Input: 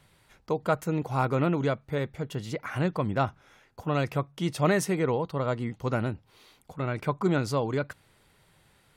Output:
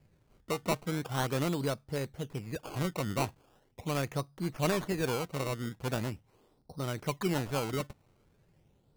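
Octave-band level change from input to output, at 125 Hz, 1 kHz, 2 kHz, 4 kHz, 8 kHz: -5.5 dB, -6.0 dB, -4.5 dB, +1.0 dB, 0.0 dB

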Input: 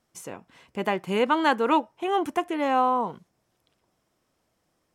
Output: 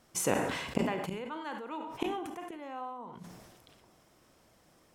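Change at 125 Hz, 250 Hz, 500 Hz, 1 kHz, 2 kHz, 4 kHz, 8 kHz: -0.5 dB, -8.5 dB, -9.5 dB, -14.0 dB, -9.0 dB, -7.5 dB, no reading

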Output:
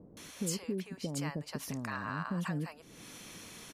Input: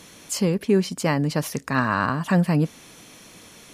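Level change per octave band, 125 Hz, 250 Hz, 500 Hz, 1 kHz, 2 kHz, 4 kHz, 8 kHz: -15.0 dB, -15.0 dB, -17.5 dB, -15.5 dB, -14.5 dB, -11.0 dB, -8.5 dB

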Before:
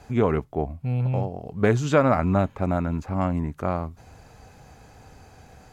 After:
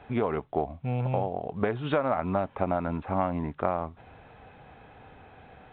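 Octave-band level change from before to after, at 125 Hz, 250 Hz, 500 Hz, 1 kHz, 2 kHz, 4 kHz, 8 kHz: -8.0 dB, -6.5 dB, -4.0 dB, -1.5 dB, -6.0 dB, -4.0 dB, no reading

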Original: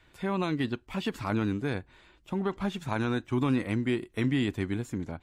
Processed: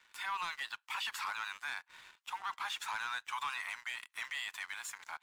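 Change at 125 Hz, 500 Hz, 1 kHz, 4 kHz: under -40 dB, -31.0 dB, -2.0 dB, +0.5 dB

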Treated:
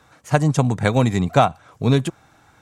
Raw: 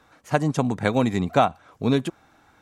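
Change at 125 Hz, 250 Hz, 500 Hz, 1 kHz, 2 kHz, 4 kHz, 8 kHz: +8.0 dB, +2.5 dB, +2.5 dB, +3.0 dB, +3.0 dB, +4.0 dB, +7.0 dB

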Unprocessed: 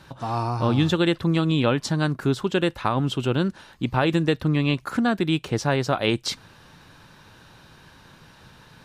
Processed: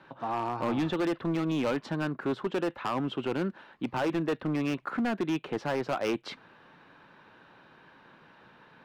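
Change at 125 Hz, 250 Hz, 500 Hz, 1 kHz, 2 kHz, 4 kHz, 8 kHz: -14.0 dB, -7.0 dB, -6.0 dB, -6.0 dB, -8.0 dB, -12.5 dB, -13.5 dB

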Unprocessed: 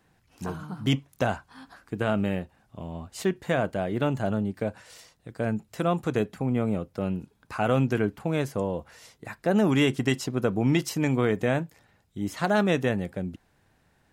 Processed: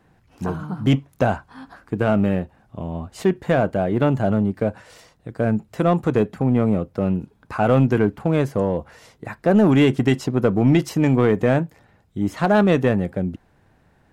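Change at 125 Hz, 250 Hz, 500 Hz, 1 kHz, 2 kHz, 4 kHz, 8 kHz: +7.5 dB, +7.5 dB, +7.0 dB, +6.5 dB, +3.5 dB, +0.5 dB, no reading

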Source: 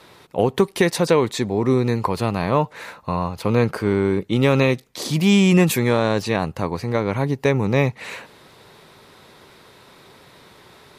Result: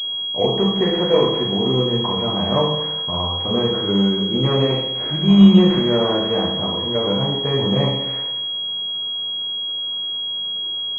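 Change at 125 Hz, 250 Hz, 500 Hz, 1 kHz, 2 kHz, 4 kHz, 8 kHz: 0.0 dB, +3.0 dB, +0.5 dB, -1.0 dB, -8.5 dB, +15.0 dB, under -20 dB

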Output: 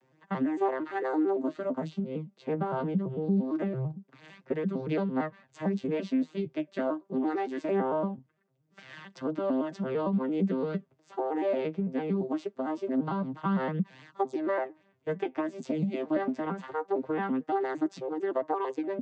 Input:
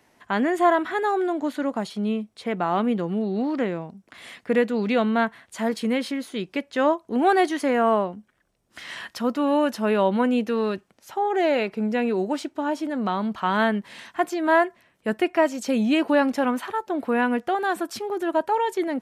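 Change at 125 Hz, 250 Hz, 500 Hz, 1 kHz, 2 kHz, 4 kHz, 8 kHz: +2.0 dB, -6.0 dB, -7.5 dB, -10.5 dB, -14.0 dB, -16.5 dB, under -15 dB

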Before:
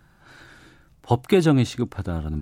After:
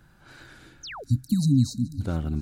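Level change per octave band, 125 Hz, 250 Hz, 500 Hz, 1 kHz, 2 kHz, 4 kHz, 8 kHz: 0.0 dB, -2.5 dB, -18.5 dB, -14.0 dB, -9.0 dB, -4.5 dB, +0.5 dB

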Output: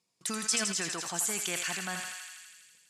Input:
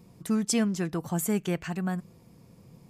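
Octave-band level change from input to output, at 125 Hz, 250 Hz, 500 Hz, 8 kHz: -14.5 dB, -14.0 dB, -8.5 dB, +5.5 dB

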